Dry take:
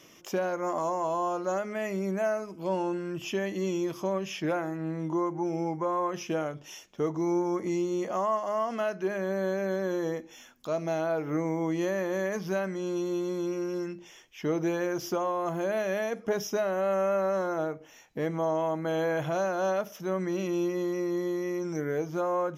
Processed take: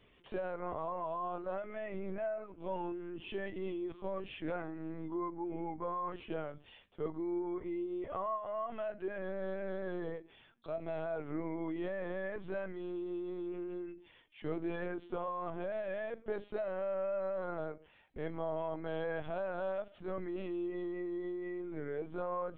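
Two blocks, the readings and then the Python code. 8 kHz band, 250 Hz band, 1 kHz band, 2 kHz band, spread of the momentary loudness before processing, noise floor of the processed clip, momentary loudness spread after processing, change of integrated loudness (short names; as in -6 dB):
under -35 dB, -10.0 dB, -9.0 dB, -9.5 dB, 5 LU, -63 dBFS, 5 LU, -9.5 dB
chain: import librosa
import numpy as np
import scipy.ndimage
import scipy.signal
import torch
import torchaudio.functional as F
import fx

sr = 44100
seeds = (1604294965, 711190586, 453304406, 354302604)

y = fx.lpc_vocoder(x, sr, seeds[0], excitation='pitch_kept', order=16)
y = y * librosa.db_to_amplitude(-9.0)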